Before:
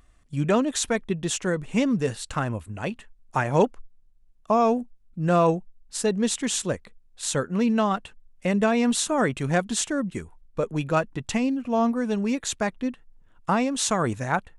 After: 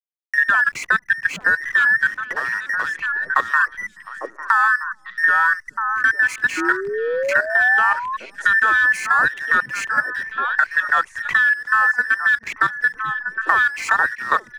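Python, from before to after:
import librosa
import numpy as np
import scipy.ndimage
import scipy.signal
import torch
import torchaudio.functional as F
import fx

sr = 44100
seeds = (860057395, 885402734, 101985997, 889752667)

y = fx.band_invert(x, sr, width_hz=2000)
y = fx.env_lowpass(y, sr, base_hz=610.0, full_db=-20.0)
y = fx.band_shelf(y, sr, hz=1600.0, db=9.5, octaves=1.7)
y = fx.level_steps(y, sr, step_db=15)
y = fx.backlash(y, sr, play_db=-36.0)
y = fx.echo_stepped(y, sr, ms=424, hz=160.0, octaves=1.4, feedback_pct=70, wet_db=-5.0)
y = fx.spec_paint(y, sr, seeds[0], shape='rise', start_s=6.57, length_s=1.6, low_hz=320.0, high_hz=1100.0, level_db=-28.0)
y = fx.band_squash(y, sr, depth_pct=70)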